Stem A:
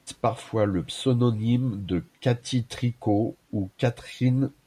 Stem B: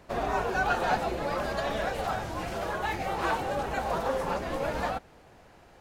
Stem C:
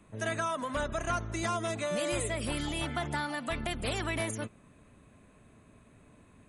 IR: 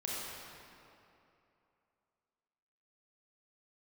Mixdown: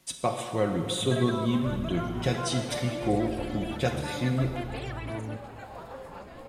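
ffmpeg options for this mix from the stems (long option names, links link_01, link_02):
-filter_complex "[0:a]highshelf=frequency=3600:gain=9,aecho=1:1:5.4:0.42,volume=-7.5dB,asplit=2[link_01][link_02];[link_02]volume=-3.5dB[link_03];[1:a]bandreject=frequency=5900:width=6.1,adelay=1850,volume=-13dB[link_04];[2:a]lowpass=frequency=2100:poles=1,aphaser=in_gain=1:out_gain=1:delay=3:decay=0.54:speed=0.93:type=sinusoidal,adelay=900,volume=-1.5dB,asplit=2[link_05][link_06];[link_06]volume=-18dB[link_07];[link_04][link_05]amix=inputs=2:normalize=0,alimiter=level_in=4dB:limit=-24dB:level=0:latency=1:release=164,volume=-4dB,volume=0dB[link_08];[3:a]atrim=start_sample=2205[link_09];[link_03][link_07]amix=inputs=2:normalize=0[link_10];[link_10][link_09]afir=irnorm=-1:irlink=0[link_11];[link_01][link_08][link_11]amix=inputs=3:normalize=0"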